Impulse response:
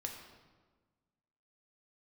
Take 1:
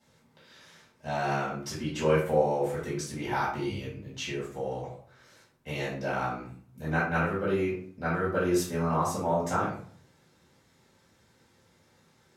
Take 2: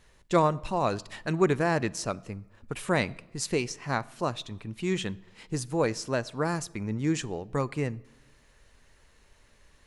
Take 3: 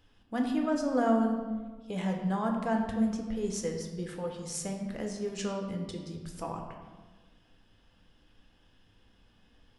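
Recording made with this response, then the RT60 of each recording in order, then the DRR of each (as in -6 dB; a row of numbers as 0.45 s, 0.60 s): 3; 0.50 s, 1.0 s, 1.4 s; -9.0 dB, 18.5 dB, 1.5 dB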